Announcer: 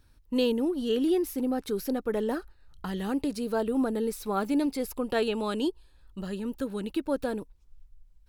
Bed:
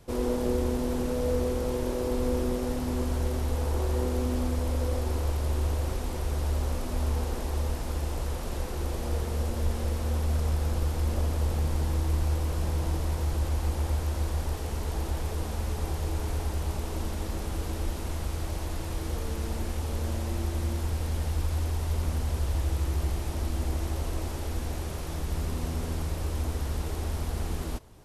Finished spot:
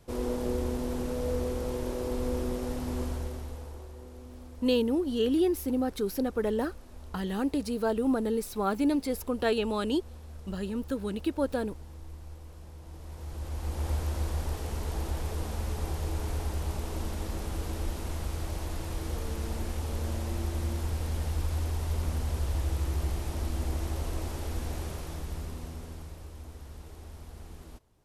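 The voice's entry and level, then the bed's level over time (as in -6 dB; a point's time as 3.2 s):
4.30 s, 0.0 dB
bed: 3.04 s -3.5 dB
3.95 s -18.5 dB
12.82 s -18.5 dB
13.9 s -2 dB
24.85 s -2 dB
26.34 s -14.5 dB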